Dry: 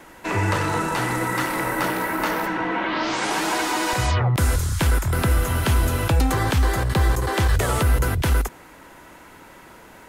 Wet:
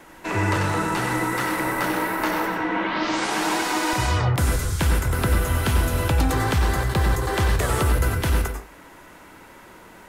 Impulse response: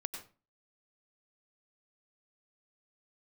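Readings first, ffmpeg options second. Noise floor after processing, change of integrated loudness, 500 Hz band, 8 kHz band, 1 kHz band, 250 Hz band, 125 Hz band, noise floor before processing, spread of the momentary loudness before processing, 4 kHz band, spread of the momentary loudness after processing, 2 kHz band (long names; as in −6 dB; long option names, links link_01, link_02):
−47 dBFS, −0.5 dB, −0.5 dB, −1.0 dB, −0.5 dB, +0.5 dB, −1.0 dB, −46 dBFS, 3 LU, −0.5 dB, 3 LU, −0.5 dB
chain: -filter_complex "[1:a]atrim=start_sample=2205[link_01];[0:a][link_01]afir=irnorm=-1:irlink=0"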